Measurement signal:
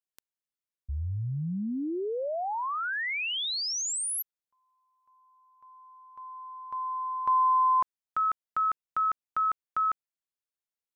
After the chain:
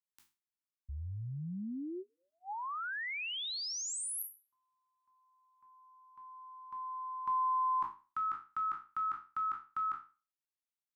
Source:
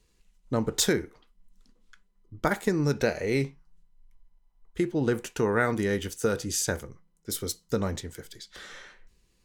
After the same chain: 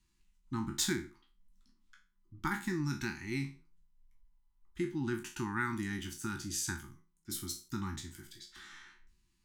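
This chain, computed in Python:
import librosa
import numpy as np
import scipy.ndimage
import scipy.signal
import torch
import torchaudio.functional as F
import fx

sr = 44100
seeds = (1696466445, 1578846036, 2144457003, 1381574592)

y = fx.spec_trails(x, sr, decay_s=0.33)
y = scipy.signal.sosfilt(scipy.signal.ellip(4, 1.0, 40, [370.0, 810.0], 'bandstop', fs=sr, output='sos'), y)
y = F.gain(torch.from_numpy(y), -8.0).numpy()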